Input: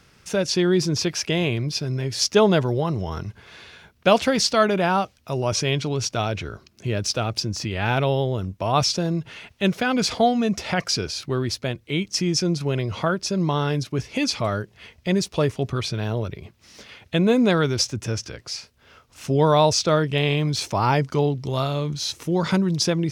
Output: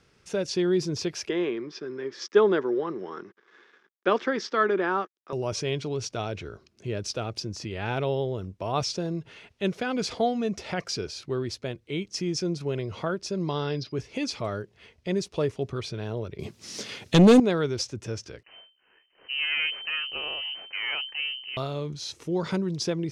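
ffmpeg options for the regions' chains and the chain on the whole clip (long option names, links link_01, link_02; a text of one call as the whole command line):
ffmpeg -i in.wav -filter_complex "[0:a]asettb=1/sr,asplit=3[link_01][link_02][link_03];[link_01]atrim=end=1.294[link_04];[link_02]atrim=start=1.29:end=5.33,asetpts=PTS-STARTPTS,afade=type=in:duration=0.004:curve=qsin,afade=type=out:start_time=4.036:duration=0.004:curve=qsin,aeval=exprs='sgn(val(0))*max(abs(val(0))-0.00473,0)':channel_layout=same,highpass=frequency=220:width=0.5412,highpass=frequency=220:width=1.3066,equalizer=frequency=360:width_type=q:width=4:gain=6,equalizer=frequency=660:width_type=q:width=4:gain=-7,equalizer=frequency=1200:width_type=q:width=4:gain=7,equalizer=frequency=1700:width_type=q:width=4:gain=8,equalizer=frequency=2700:width_type=q:width=4:gain=-6,equalizer=frequency=4300:width_type=q:width=4:gain=-9,lowpass=frequency=5100:width=0.5412,lowpass=frequency=5100:width=1.3066[link_05];[link_03]atrim=start=5.326[link_06];[link_04][link_05]acrossfade=duration=0.004:curve1=hsin:curve2=qsin[link_07];[link_07][link_06]acrossfade=duration=0.004:curve1=qsin:curve2=hsin,asettb=1/sr,asplit=3[link_08][link_09][link_10];[link_08]atrim=end=13.484[link_11];[link_09]atrim=start=13.48:end=13.92,asetpts=PTS-STARTPTS,afade=type=in:duration=0.004:curve=qsin,afade=type=out:start_time=0.436:duration=0.004:curve=qsin,highshelf=frequency=6400:width_type=q:width=3:gain=-11,aeval=exprs='val(0)+0.00501*sin(2*PI*4900*n/s)':channel_layout=same[link_12];[link_10]atrim=start=13.916[link_13];[link_11][link_12]acrossfade=duration=0.004:curve1=hsin:curve2=qsin[link_14];[link_14][link_13]acrossfade=duration=0.004:curve1=qsin:curve2=hsin,asettb=1/sr,asplit=3[link_15][link_16][link_17];[link_15]atrim=end=16.394[link_18];[link_16]atrim=start=16.39:end=17.4,asetpts=PTS-STARTPTS,afade=type=in:duration=0.004:curve=qsin,afade=type=out:start_time=1.006:duration=0.004:curve=qsin,highpass=180,bass=frequency=250:gain=10,treble=frequency=4000:gain=11,aeval=exprs='0.631*sin(PI/2*2.24*val(0)/0.631)':channel_layout=same[link_19];[link_17]atrim=start=17.396[link_20];[link_18][link_19]acrossfade=duration=0.004:curve1=hsin:curve2=qsin[link_21];[link_21][link_20]acrossfade=duration=0.004:curve1=qsin:curve2=hsin,asettb=1/sr,asplit=3[link_22][link_23][link_24];[link_22]atrim=end=18.434[link_25];[link_23]atrim=start=18.43:end=21.57,asetpts=PTS-STARTPTS,afade=type=in:duration=0.004:curve=qsin,afade=type=out:start_time=3.136:duration=0.004:curve=qsin,aeval=exprs='if(lt(val(0),0),0.251*val(0),val(0))':channel_layout=same,lowpass=frequency=2600:width_type=q:width=0.5098,lowpass=frequency=2600:width_type=q:width=0.6013,lowpass=frequency=2600:width_type=q:width=0.9,lowpass=frequency=2600:width_type=q:width=2.563,afreqshift=-3100[link_26];[link_24]atrim=start=21.566[link_27];[link_25][link_26]acrossfade=duration=0.004:curve1=hsin:curve2=qsin[link_28];[link_28][link_27]acrossfade=duration=0.004:curve1=qsin:curve2=hsin,lowpass=9600,equalizer=frequency=410:width_type=o:width=0.8:gain=6,volume=-8.5dB" out.wav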